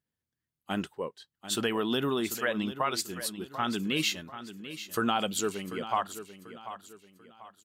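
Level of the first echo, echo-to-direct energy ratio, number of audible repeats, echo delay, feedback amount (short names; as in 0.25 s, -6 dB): -12.5 dB, -12.0 dB, 3, 0.74 s, 36%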